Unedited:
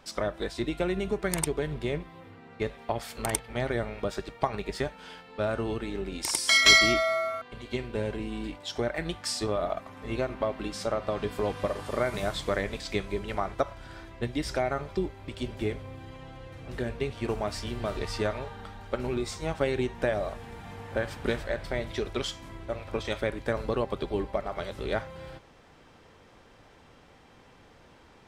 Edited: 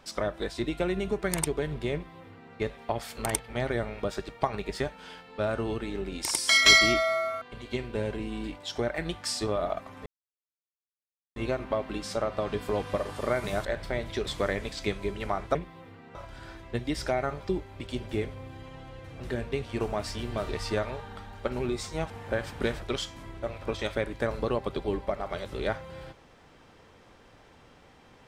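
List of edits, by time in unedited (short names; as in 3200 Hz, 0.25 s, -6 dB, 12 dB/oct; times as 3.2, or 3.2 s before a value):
1.94–2.54 copy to 13.63
10.06 insert silence 1.30 s
19.58–20.74 cut
21.46–22.08 move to 12.35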